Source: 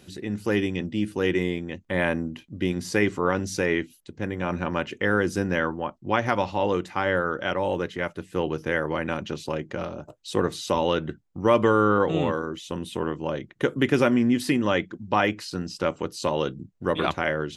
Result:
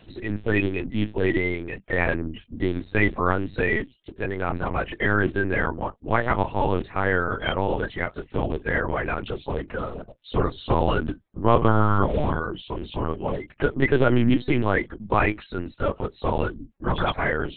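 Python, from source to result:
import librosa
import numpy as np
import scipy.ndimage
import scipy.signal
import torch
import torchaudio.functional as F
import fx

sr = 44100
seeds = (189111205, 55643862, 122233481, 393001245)

y = fx.spec_quant(x, sr, step_db=30)
y = fx.low_shelf(y, sr, hz=170.0, db=7.5, at=(10.55, 11.25))
y = fx.notch_comb(y, sr, f0_hz=170.0)
y = fx.lpc_vocoder(y, sr, seeds[0], excitation='pitch_kept', order=8)
y = F.gain(torch.from_numpy(y), 3.5).numpy()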